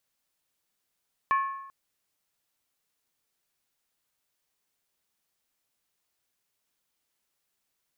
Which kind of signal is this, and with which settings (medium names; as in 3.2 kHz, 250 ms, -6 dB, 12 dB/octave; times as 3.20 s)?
skin hit length 0.39 s, lowest mode 1.09 kHz, decay 0.90 s, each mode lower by 9 dB, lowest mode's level -19.5 dB